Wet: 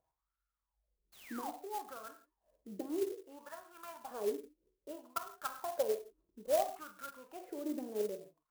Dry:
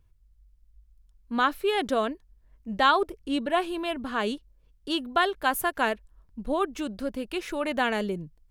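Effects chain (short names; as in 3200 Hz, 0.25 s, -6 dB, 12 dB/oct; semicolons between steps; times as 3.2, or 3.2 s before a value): treble ducked by the level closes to 430 Hz, closed at -20 dBFS; 3.14–4.11 low shelf 460 Hz -11 dB; compressor 1.5:1, threshold -51 dBFS, peak gain reduction 11 dB; 1.12–1.5 painted sound fall 670–4500 Hz -30 dBFS; wah 0.61 Hz 320–1400 Hz, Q 10; non-linear reverb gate 0.19 s falling, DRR 5 dB; clock jitter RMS 0.053 ms; gain +11.5 dB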